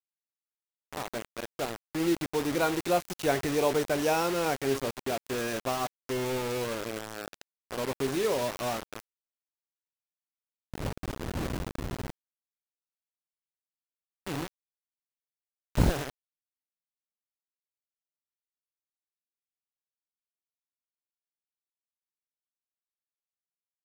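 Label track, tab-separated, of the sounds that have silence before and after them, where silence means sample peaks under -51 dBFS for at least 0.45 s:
0.930000	9.000000	sound
10.740000	12.100000	sound
14.270000	14.480000	sound
15.750000	16.100000	sound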